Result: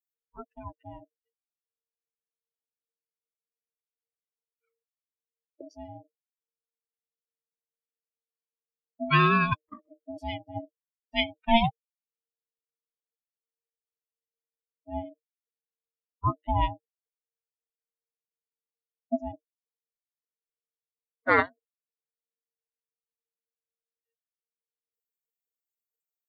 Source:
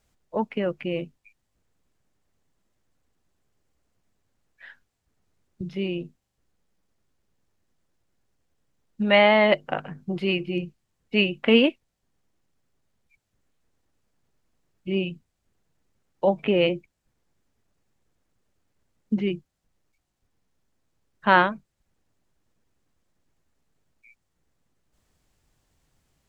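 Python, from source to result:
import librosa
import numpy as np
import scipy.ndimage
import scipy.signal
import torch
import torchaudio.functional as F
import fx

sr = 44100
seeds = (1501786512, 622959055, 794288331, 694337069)

y = fx.bin_expand(x, sr, power=3.0)
y = y * np.sin(2.0 * np.pi * 460.0 * np.arange(len(y)) / sr)
y = F.gain(torch.from_numpy(y), 2.5).numpy()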